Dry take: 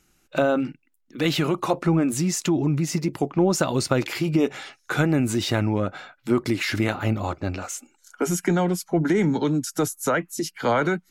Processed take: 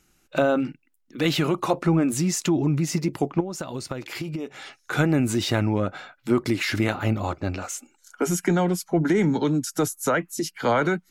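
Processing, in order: 3.40–4.93 s: compression 10:1, threshold -28 dBFS, peak gain reduction 13.5 dB

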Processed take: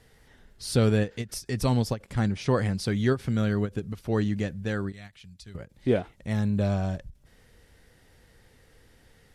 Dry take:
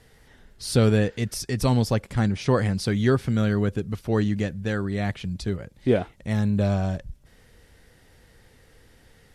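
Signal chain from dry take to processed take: 4.92–5.55 s: amplifier tone stack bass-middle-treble 5-5-5; endings held to a fixed fall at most 320 dB/s; trim -3 dB

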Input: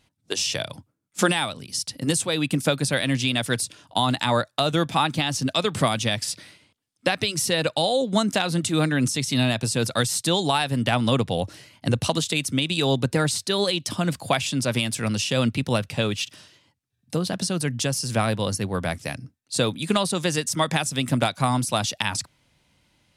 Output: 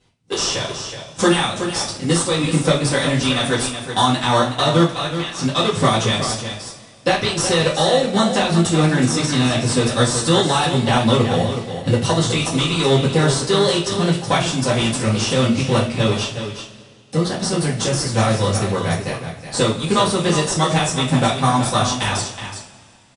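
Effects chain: 4.90–5.38 s: ladder high-pass 1.2 kHz, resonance 35%; delay 372 ms -9 dB; in parallel at -6.5 dB: sample-and-hold 18×; on the sum: steep low-pass 10 kHz 96 dB/octave; two-slope reverb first 0.3 s, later 2.3 s, from -21 dB, DRR -7.5 dB; trim -4.5 dB

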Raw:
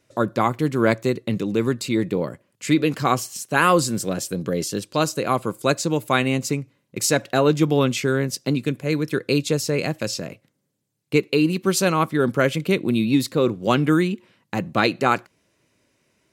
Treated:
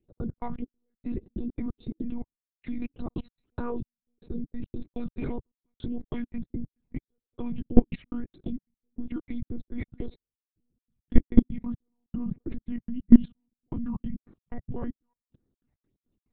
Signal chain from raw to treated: pitch bend over the whole clip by -5.5 st starting unshifted; trance gate "x.x.xx....xx.x." 142 bpm -60 dB; in parallel at -2 dB: compression 8:1, threshold -28 dBFS, peak gain reduction 15.5 dB; on the sum: peaking EQ 320 Hz +11.5 dB 1.9 oct; phase shifter stages 8, 1.7 Hz, lowest notch 400–3000 Hz; peaking EQ 110 Hz +13 dB 2.2 oct; monotone LPC vocoder at 8 kHz 240 Hz; level held to a coarse grid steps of 23 dB; trim -7 dB

